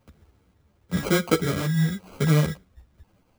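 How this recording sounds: phasing stages 6, 1 Hz, lowest notch 580–2400 Hz; aliases and images of a low sample rate 1800 Hz, jitter 0%; a shimmering, thickened sound

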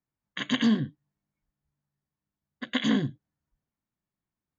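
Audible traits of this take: noise floor -91 dBFS; spectral tilt -4.0 dB/oct

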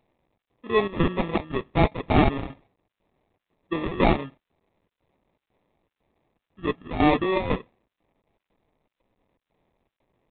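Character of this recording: a quantiser's noise floor 12-bit, dither triangular; chopped level 2 Hz, depth 65%, duty 75%; aliases and images of a low sample rate 1500 Hz, jitter 0%; G.726

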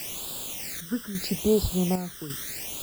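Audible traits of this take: a quantiser's noise floor 6-bit, dither triangular; chopped level 0.87 Hz, depth 60%, duty 70%; phasing stages 12, 0.77 Hz, lowest notch 740–2000 Hz

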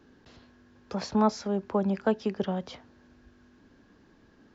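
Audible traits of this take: noise floor -60 dBFS; spectral tilt -6.0 dB/oct

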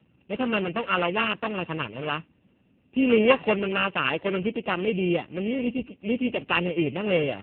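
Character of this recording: a buzz of ramps at a fixed pitch in blocks of 16 samples; AMR-NB

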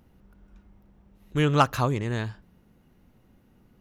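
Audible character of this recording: noise floor -61 dBFS; spectral tilt -5.5 dB/oct

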